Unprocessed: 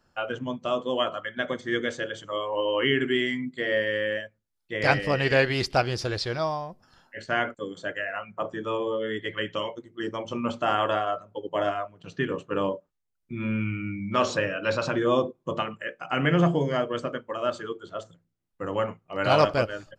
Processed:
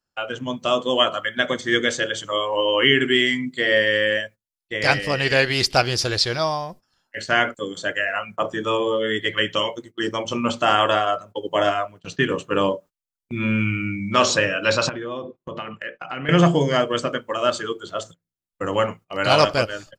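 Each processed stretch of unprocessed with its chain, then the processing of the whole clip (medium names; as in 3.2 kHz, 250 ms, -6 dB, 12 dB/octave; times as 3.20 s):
14.89–16.29 s: low-pass 2.9 kHz + compression 3:1, threshold -37 dBFS
whole clip: gate -46 dBFS, range -19 dB; treble shelf 2.8 kHz +11.5 dB; level rider gain up to 6 dB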